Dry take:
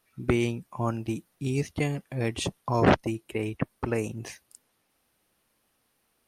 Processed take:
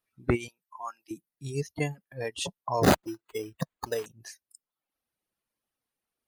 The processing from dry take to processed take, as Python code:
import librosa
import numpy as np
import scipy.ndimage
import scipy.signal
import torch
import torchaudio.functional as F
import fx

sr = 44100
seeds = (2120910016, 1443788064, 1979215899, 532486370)

y = fx.dereverb_blind(x, sr, rt60_s=0.81)
y = fx.highpass(y, sr, hz=950.0, slope=12, at=(0.48, 1.11))
y = fx.noise_reduce_blind(y, sr, reduce_db=14)
y = fx.resample_bad(y, sr, factor=8, down='none', up='hold', at=(2.83, 4.06))